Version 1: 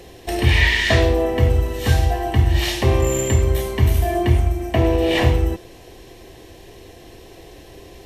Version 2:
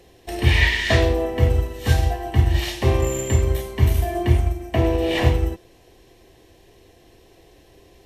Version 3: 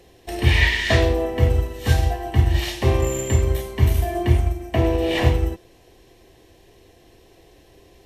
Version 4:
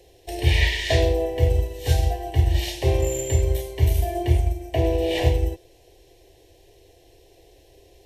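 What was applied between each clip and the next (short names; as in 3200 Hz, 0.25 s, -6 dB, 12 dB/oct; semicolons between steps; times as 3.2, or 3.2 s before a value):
upward expander 1.5:1, over -30 dBFS
nothing audible
fixed phaser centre 520 Hz, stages 4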